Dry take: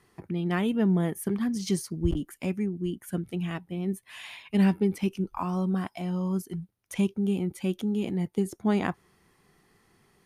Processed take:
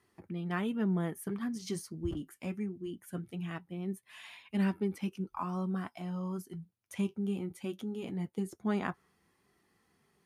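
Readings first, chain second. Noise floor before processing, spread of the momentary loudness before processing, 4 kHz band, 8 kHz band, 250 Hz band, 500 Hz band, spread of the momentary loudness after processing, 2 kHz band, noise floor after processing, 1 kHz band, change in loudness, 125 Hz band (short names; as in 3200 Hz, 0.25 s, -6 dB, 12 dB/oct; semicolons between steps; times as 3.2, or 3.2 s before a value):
-68 dBFS, 9 LU, -8.0 dB, -8.0 dB, -8.0 dB, -7.5 dB, 10 LU, -5.5 dB, -74 dBFS, -5.5 dB, -7.5 dB, -8.0 dB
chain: HPF 59 Hz; dynamic EQ 1300 Hz, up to +6 dB, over -49 dBFS, Q 1.6; flange 0.21 Hz, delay 3 ms, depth 6.7 ms, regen -57%; gain -4 dB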